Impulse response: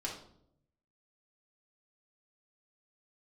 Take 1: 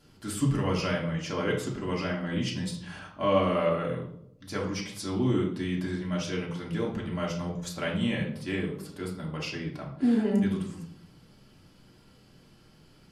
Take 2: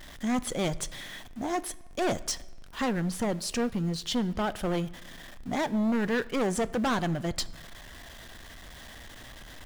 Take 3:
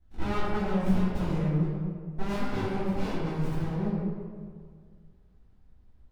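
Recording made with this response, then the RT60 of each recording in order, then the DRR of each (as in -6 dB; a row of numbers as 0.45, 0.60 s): 1; 0.70, 1.1, 2.0 s; -3.5, 15.0, -16.0 dB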